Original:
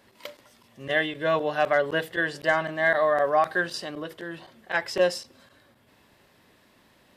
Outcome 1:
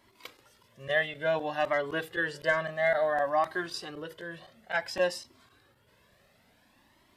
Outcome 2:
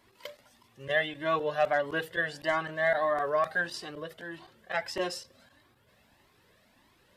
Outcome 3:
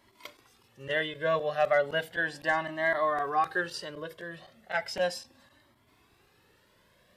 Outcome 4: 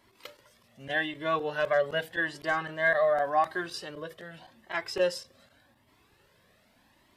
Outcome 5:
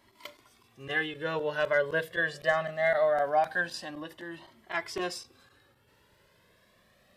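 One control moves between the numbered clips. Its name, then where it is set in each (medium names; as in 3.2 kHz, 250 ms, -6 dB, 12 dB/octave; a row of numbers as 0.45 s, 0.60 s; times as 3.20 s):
Shepard-style flanger, rate: 0.57 Hz, 1.6 Hz, 0.35 Hz, 0.85 Hz, 0.22 Hz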